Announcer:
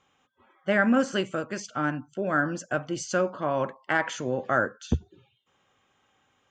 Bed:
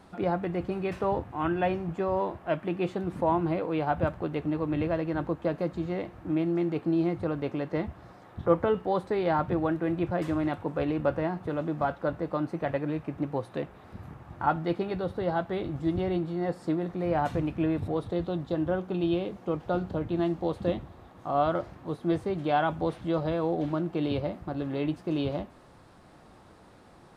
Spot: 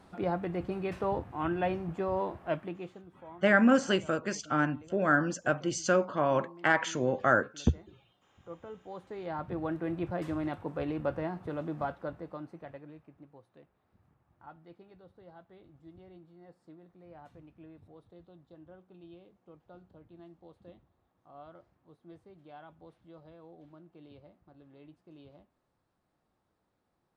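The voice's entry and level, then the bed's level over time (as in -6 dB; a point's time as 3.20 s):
2.75 s, -0.5 dB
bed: 2.55 s -3.5 dB
3.14 s -23.5 dB
8.42 s -23.5 dB
9.75 s -5.5 dB
11.80 s -5.5 dB
13.39 s -25 dB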